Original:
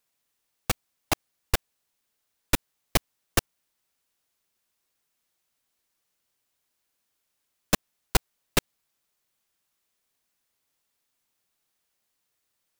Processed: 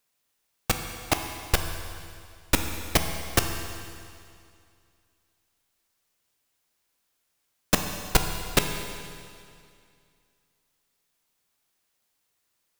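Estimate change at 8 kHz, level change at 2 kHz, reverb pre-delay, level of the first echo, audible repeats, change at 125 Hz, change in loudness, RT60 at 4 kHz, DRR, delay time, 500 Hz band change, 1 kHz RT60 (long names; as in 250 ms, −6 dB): +2.5 dB, +3.0 dB, 12 ms, no echo audible, no echo audible, +3.0 dB, +2.0 dB, 2.2 s, 4.5 dB, no echo audible, +2.5 dB, 2.3 s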